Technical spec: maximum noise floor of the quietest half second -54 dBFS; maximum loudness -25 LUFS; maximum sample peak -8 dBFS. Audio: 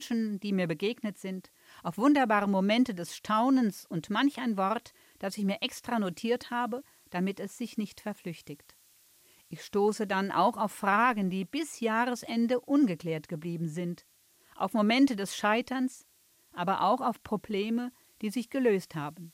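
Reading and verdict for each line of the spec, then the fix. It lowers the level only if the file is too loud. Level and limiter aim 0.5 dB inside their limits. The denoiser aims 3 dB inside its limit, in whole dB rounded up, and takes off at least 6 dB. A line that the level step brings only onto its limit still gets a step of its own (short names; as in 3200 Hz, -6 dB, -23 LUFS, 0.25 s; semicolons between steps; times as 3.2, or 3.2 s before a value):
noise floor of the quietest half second -65 dBFS: OK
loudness -30.0 LUFS: OK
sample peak -13.5 dBFS: OK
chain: none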